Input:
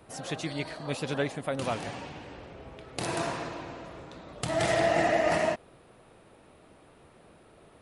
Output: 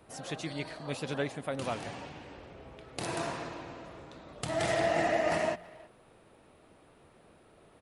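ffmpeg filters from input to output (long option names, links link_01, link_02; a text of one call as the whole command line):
ffmpeg -i in.wav -filter_complex "[0:a]bandreject=frequency=58.15:width_type=h:width=4,bandreject=frequency=116.3:width_type=h:width=4,bandreject=frequency=174.45:width_type=h:width=4,asplit=2[link_01][link_02];[link_02]adelay=320,highpass=300,lowpass=3400,asoftclip=type=hard:threshold=-24dB,volume=-20dB[link_03];[link_01][link_03]amix=inputs=2:normalize=0,volume=-3.5dB" out.wav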